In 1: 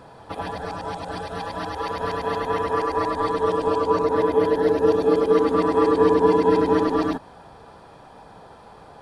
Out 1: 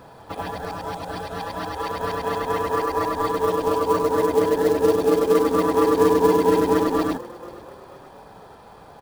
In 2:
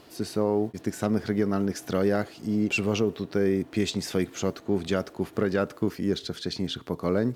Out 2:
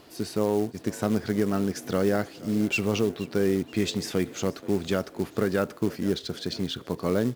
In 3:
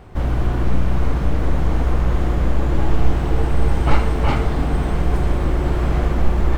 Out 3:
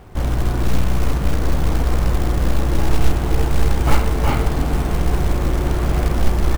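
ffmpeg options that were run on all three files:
-filter_complex "[0:a]asplit=4[a][b][c][d];[b]adelay=477,afreqshift=39,volume=-20dB[e];[c]adelay=954,afreqshift=78,volume=-26.9dB[f];[d]adelay=1431,afreqshift=117,volume=-33.9dB[g];[a][e][f][g]amix=inputs=4:normalize=0,acrusher=bits=5:mode=log:mix=0:aa=0.000001"

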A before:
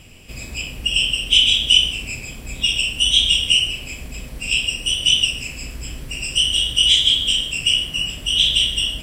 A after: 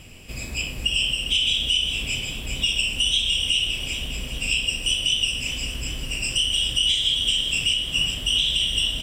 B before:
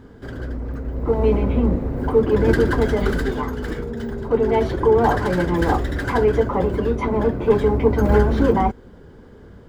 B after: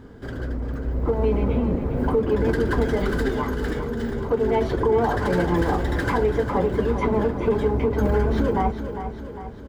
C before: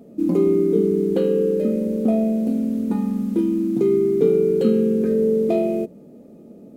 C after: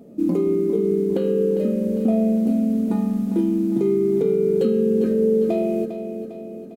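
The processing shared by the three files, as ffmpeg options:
-af "alimiter=limit=-12dB:level=0:latency=1:release=236,aecho=1:1:402|804|1206|1608|2010|2412:0.316|0.171|0.0922|0.0498|0.0269|0.0145"

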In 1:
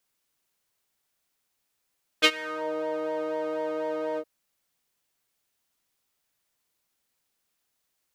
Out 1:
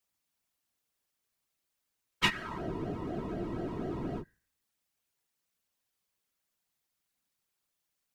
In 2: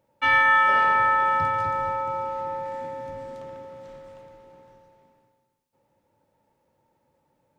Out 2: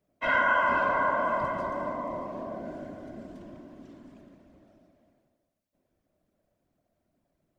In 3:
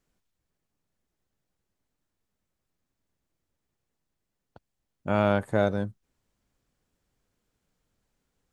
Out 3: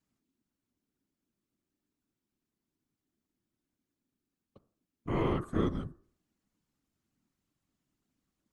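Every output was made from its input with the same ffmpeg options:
-af "bandreject=f=74.75:t=h:w=4,bandreject=f=149.5:t=h:w=4,bandreject=f=224.25:t=h:w=4,bandreject=f=299:t=h:w=4,bandreject=f=373.75:t=h:w=4,bandreject=f=448.5:t=h:w=4,bandreject=f=523.25:t=h:w=4,bandreject=f=598:t=h:w=4,bandreject=f=672.75:t=h:w=4,bandreject=f=747.5:t=h:w=4,bandreject=f=822.25:t=h:w=4,bandreject=f=897:t=h:w=4,bandreject=f=971.75:t=h:w=4,bandreject=f=1.0465k:t=h:w=4,bandreject=f=1.12125k:t=h:w=4,bandreject=f=1.196k:t=h:w=4,bandreject=f=1.27075k:t=h:w=4,bandreject=f=1.3455k:t=h:w=4,bandreject=f=1.42025k:t=h:w=4,bandreject=f=1.495k:t=h:w=4,bandreject=f=1.56975k:t=h:w=4,bandreject=f=1.6445k:t=h:w=4,bandreject=f=1.71925k:t=h:w=4,bandreject=f=1.794k:t=h:w=4,bandreject=f=1.86875k:t=h:w=4,bandreject=f=1.9435k:t=h:w=4,bandreject=f=2.01825k:t=h:w=4,bandreject=f=2.093k:t=h:w=4,bandreject=f=2.16775k:t=h:w=4,afreqshift=-270,afftfilt=real='hypot(re,im)*cos(2*PI*random(0))':imag='hypot(re,im)*sin(2*PI*random(1))':win_size=512:overlap=0.75"

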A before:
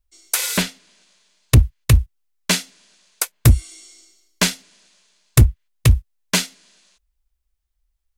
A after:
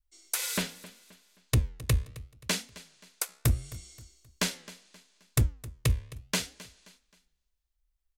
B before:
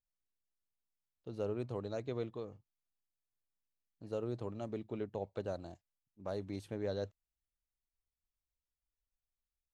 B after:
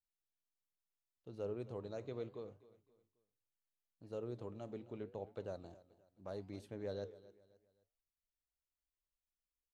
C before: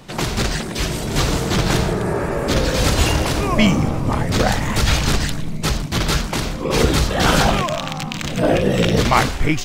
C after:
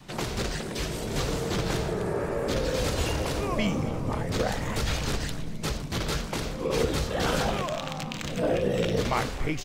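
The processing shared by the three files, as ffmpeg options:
-filter_complex "[0:a]acompressor=threshold=-27dB:ratio=1.5,asplit=2[a][b];[b]aecho=0:1:264|528|792:0.119|0.0452|0.0172[c];[a][c]amix=inputs=2:normalize=0,flanger=delay=6.2:depth=9.3:regen=-87:speed=0.75:shape=triangular,adynamicequalizer=threshold=0.00631:dfrequency=480:dqfactor=2.6:tfrequency=480:tqfactor=2.6:attack=5:release=100:ratio=0.375:range=3:mode=boostabove:tftype=bell,volume=-2dB"

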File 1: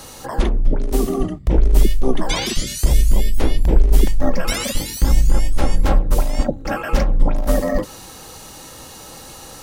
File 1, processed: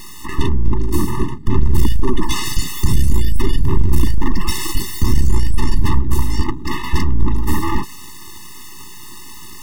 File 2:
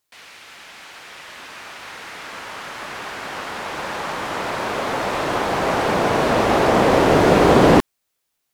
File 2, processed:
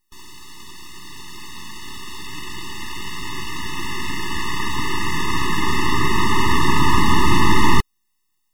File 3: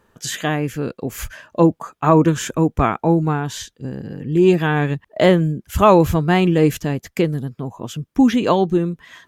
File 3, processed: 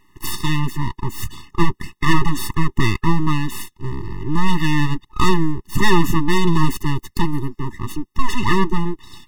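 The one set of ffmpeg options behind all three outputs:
-af "aeval=exprs='abs(val(0))':c=same,aeval=exprs='(tanh(2.24*val(0)+0.2)-tanh(0.2))/2.24':c=same,afftfilt=real='re*eq(mod(floor(b*sr/1024/430),2),0)':imag='im*eq(mod(floor(b*sr/1024/430),2),0)':win_size=1024:overlap=0.75,volume=7dB"

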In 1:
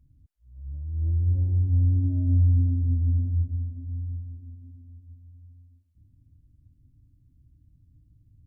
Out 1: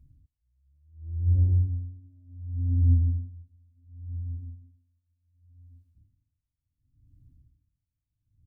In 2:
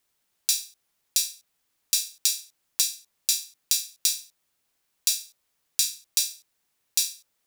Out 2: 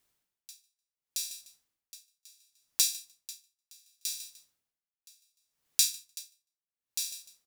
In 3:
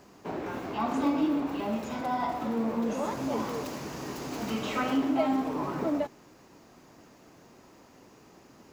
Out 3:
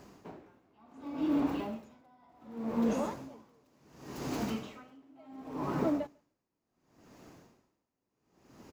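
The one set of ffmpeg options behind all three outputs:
-filter_complex "[0:a]lowshelf=f=260:g=5,asplit=2[a][b];[b]aecho=0:1:150|300:0.0891|0.0223[c];[a][c]amix=inputs=2:normalize=0,aeval=exprs='val(0)*pow(10,-33*(0.5-0.5*cos(2*PI*0.69*n/s))/20)':c=same,volume=-1dB"

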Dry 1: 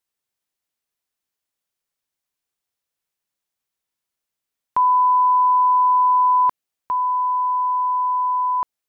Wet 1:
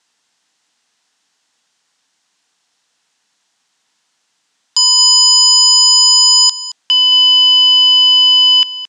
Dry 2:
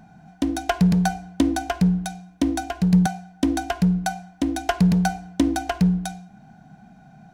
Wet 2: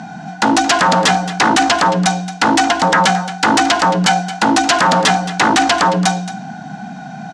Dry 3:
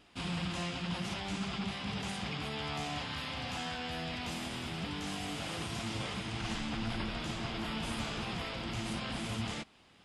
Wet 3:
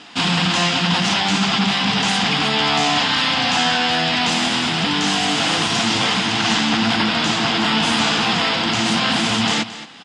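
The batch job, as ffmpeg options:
-filter_complex "[0:a]aeval=exprs='0.562*sin(PI/2*10*val(0)/0.562)':c=same,highpass=250,equalizer=f=380:t=q:w=4:g=-10,equalizer=f=570:t=q:w=4:g=-9,equalizer=f=1.2k:t=q:w=4:g=-3,equalizer=f=2.3k:t=q:w=4:g=-4,lowpass=f=7.6k:w=0.5412,lowpass=f=7.6k:w=1.3066,asplit=2[a][b];[b]aecho=0:1:222:0.188[c];[a][c]amix=inputs=2:normalize=0"

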